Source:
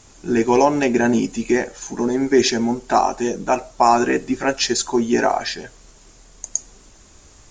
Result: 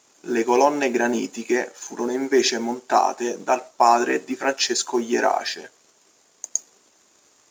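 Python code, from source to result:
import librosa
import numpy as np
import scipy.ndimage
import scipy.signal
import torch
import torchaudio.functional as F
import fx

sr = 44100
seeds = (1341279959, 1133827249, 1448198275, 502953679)

y = fx.law_mismatch(x, sr, coded='A')
y = scipy.signal.sosfilt(scipy.signal.butter(2, 320.0, 'highpass', fs=sr, output='sos'), y)
y = y * librosa.db_to_amplitude(-1.0)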